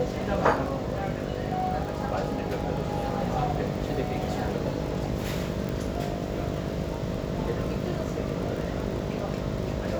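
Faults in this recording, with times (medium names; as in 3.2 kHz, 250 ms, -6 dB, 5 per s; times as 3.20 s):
buzz 50 Hz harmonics 13 -34 dBFS
crackle 37 per s -34 dBFS
5.69 s: pop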